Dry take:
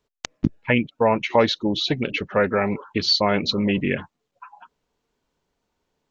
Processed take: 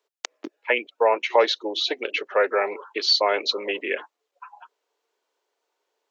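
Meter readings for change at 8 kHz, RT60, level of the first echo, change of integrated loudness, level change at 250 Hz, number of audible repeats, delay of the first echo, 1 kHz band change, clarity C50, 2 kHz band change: n/a, none, none, -1.0 dB, -14.0 dB, none, none, 0.0 dB, none, 0.0 dB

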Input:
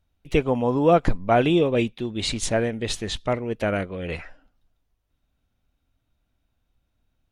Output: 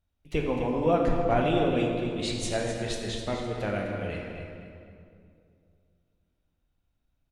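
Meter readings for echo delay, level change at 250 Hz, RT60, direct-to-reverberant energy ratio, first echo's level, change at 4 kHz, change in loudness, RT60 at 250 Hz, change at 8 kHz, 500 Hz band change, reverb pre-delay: 0.254 s, -5.0 dB, 2.5 s, -0.5 dB, -9.5 dB, -5.5 dB, -5.0 dB, 2.9 s, -6.0 dB, -5.0 dB, 6 ms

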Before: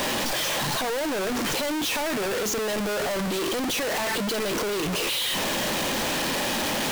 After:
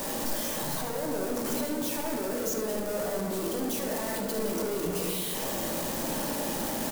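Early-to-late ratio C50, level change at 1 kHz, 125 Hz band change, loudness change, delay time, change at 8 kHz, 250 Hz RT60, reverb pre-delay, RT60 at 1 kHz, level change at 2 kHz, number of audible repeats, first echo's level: 2.5 dB, -7.0 dB, -3.5 dB, -5.0 dB, 74 ms, -4.5 dB, 3.1 s, 3 ms, 1.8 s, -12.0 dB, 1, -9.0 dB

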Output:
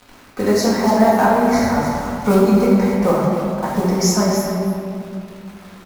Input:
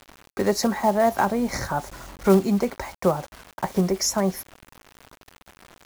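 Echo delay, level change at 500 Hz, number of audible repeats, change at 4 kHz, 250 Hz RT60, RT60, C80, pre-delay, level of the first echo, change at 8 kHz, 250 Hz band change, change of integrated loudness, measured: 0.289 s, +7.0 dB, 1, +5.0 dB, 3.5 s, 2.4 s, 0.5 dB, 4 ms, -9.0 dB, +4.0 dB, +9.0 dB, +7.0 dB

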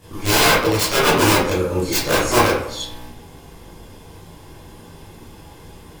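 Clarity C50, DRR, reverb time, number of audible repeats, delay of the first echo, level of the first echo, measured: 0.5 dB, -11.0 dB, 0.70 s, none, none, none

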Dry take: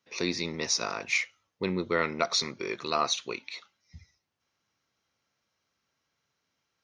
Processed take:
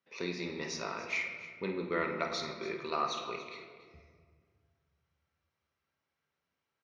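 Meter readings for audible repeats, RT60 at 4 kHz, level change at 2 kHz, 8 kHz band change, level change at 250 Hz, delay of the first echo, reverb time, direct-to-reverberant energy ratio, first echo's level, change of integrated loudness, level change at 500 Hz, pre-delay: 2, 1.0 s, -5.5 dB, -14.5 dB, -5.5 dB, 51 ms, 1.8 s, 2.0 dB, -10.0 dB, -6.5 dB, -4.5 dB, 4 ms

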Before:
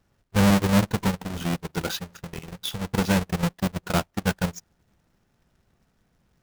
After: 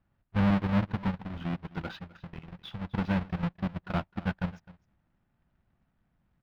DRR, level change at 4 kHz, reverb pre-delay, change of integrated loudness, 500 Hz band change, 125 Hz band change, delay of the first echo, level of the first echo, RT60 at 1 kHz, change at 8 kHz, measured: none, -14.0 dB, none, -6.5 dB, -10.5 dB, -5.5 dB, 0.258 s, -20.0 dB, none, under -30 dB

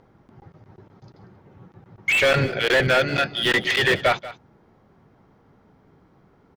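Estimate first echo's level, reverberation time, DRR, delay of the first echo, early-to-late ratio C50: -16.5 dB, none, none, 0.186 s, none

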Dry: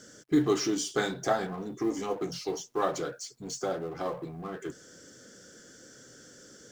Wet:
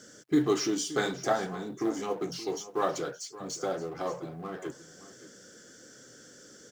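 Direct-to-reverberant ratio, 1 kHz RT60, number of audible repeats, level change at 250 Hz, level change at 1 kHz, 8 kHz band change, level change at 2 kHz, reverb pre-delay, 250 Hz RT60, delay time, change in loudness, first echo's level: none, none, 1, -0.5 dB, 0.0 dB, 0.0 dB, 0.0 dB, none, none, 0.573 s, 0.0 dB, -16.0 dB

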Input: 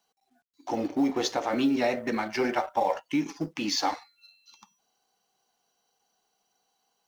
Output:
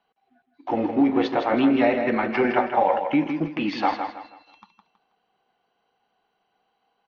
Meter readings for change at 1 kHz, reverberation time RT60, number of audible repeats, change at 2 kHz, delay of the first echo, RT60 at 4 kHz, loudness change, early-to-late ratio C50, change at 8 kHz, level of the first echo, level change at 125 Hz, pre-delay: +6.5 dB, none, 3, +6.0 dB, 0.161 s, none, +5.5 dB, none, n/a, -7.0 dB, +6.5 dB, none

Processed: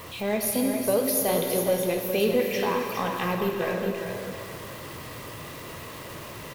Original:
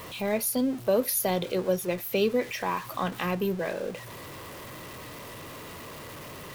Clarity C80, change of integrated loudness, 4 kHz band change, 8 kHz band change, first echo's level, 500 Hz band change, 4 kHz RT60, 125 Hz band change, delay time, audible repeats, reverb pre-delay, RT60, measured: 2.0 dB, +2.0 dB, +2.5 dB, +2.5 dB, -6.5 dB, +3.0 dB, 2.4 s, +2.0 dB, 0.41 s, 1, 7 ms, 2.6 s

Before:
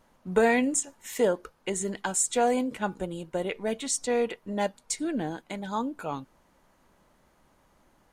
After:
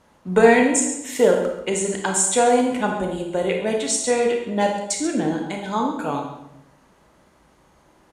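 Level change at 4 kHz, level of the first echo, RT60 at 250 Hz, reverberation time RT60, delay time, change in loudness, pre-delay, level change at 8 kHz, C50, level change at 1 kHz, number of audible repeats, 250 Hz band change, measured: +8.0 dB, -14.0 dB, 1.0 s, 0.85 s, 0.136 s, +8.5 dB, 26 ms, +7.5 dB, 4.0 dB, +8.5 dB, 1, +8.0 dB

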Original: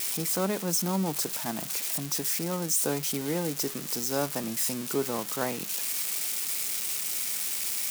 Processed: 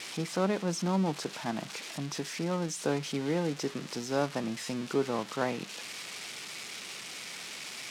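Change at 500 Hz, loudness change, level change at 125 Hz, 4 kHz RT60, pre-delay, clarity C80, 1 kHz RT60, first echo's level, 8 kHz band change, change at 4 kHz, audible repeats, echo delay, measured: 0.0 dB, -5.5 dB, 0.0 dB, none, none, none, none, none, -12.5 dB, -4.0 dB, none, none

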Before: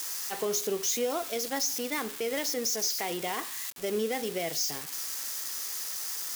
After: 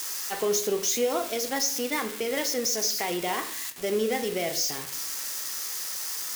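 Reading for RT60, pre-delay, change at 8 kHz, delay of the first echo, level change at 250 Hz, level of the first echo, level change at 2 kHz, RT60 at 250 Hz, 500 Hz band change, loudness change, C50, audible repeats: 0.55 s, 4 ms, +3.0 dB, none, +3.5 dB, none, +4.0 dB, 0.70 s, +4.0 dB, +3.0 dB, 12.5 dB, none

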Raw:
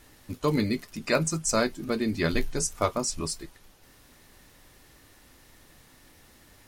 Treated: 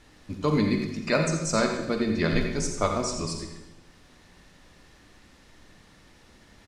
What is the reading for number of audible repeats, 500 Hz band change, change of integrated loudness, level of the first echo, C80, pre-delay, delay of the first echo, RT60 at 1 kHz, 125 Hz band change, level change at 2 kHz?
1, +1.5 dB, +1.5 dB, -11.5 dB, 6.5 dB, 39 ms, 86 ms, 0.90 s, +3.0 dB, +1.5 dB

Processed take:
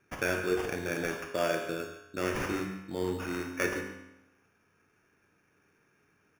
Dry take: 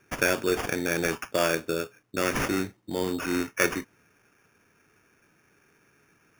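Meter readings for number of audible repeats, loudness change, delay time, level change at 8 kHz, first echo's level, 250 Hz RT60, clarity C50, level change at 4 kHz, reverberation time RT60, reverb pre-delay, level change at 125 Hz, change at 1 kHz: 1, -5.5 dB, 0.143 s, -9.5 dB, -13.5 dB, 0.90 s, 5.0 dB, -8.0 dB, 0.90 s, 25 ms, -3.5 dB, -5.0 dB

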